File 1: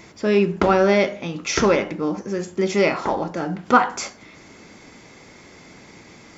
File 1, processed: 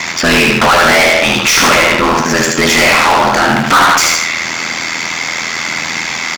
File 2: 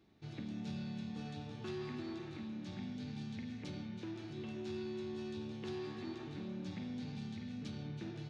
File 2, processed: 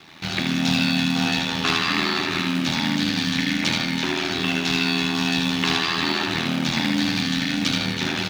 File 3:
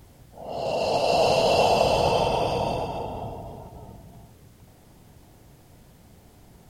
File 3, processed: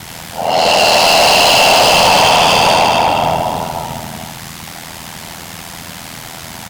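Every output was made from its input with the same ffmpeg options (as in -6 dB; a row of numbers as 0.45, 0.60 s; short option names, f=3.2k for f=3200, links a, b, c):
-filter_complex "[0:a]equalizer=f=410:t=o:w=1.5:g=-14,aecho=1:1:77|154|231|308|385:0.631|0.227|0.0818|0.0294|0.0106,asplit=2[a][b];[b]acrusher=bits=3:mode=log:mix=0:aa=0.000001,volume=-8.5dB[c];[a][c]amix=inputs=2:normalize=0,aeval=exprs='val(0)*sin(2*PI*41*n/s)':c=same,asplit=2[d][e];[e]highpass=f=720:p=1,volume=36dB,asoftclip=type=tanh:threshold=-4dB[f];[d][f]amix=inputs=2:normalize=0,lowpass=f=5.7k:p=1,volume=-6dB,volume=3dB"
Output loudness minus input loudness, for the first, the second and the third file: +11.0, +22.5, +14.0 LU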